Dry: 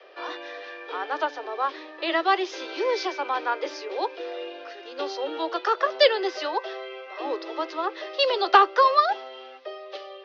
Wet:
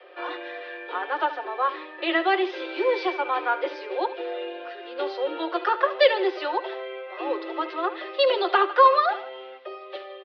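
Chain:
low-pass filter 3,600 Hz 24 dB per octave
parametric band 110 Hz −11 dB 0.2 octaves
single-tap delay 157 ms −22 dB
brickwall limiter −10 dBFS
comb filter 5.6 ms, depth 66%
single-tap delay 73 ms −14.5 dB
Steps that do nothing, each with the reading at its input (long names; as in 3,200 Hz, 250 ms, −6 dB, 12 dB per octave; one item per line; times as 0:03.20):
parametric band 110 Hz: nothing at its input below 250 Hz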